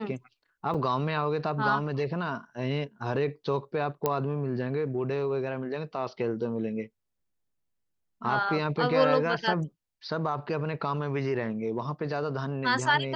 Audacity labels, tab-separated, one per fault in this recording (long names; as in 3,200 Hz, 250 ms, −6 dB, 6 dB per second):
0.740000	0.740000	drop-out 5 ms
4.060000	4.060000	click −12 dBFS